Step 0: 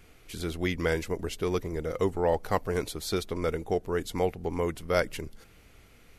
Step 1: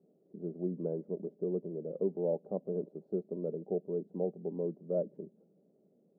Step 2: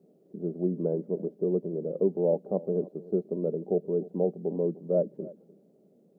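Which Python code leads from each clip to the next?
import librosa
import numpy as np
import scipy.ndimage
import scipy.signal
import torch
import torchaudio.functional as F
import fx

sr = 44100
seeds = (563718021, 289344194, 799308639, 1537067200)

y1 = scipy.signal.sosfilt(scipy.signal.ellip(3, 1.0, 60, [170.0, 600.0], 'bandpass', fs=sr, output='sos'), x)
y1 = y1 + 0.35 * np.pad(y1, (int(5.1 * sr / 1000.0), 0))[:len(y1)]
y1 = y1 * 10.0 ** (-5.0 / 20.0)
y2 = y1 + 10.0 ** (-19.5 / 20.0) * np.pad(y1, (int(300 * sr / 1000.0), 0))[:len(y1)]
y2 = y2 * 10.0 ** (7.0 / 20.0)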